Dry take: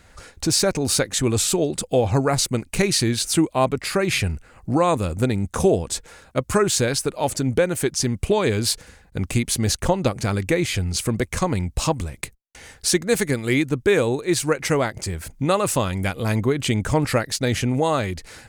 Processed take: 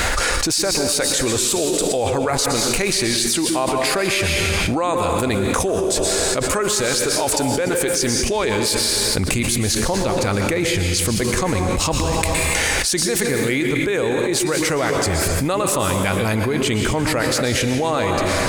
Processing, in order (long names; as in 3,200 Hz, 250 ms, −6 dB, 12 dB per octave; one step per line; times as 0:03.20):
parametric band 130 Hz −12 dB 2.2 octaves, from 0:09.17 −5.5 dB
dense smooth reverb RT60 1.2 s, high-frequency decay 0.9×, pre-delay 105 ms, DRR 6.5 dB
envelope flattener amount 100%
level −4 dB